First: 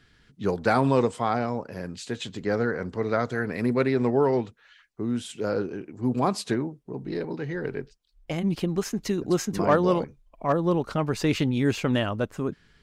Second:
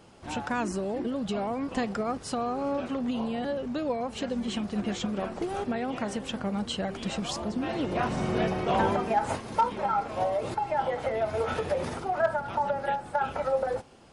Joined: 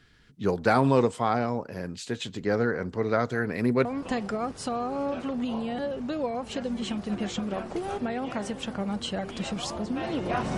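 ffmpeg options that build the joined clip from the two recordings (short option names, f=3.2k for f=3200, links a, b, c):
-filter_complex "[0:a]apad=whole_dur=10.57,atrim=end=10.57,atrim=end=3.852[a];[1:a]atrim=start=1.508:end=8.23[b];[a][b]acrossfade=d=0.004:c1=hsin:c2=hsin"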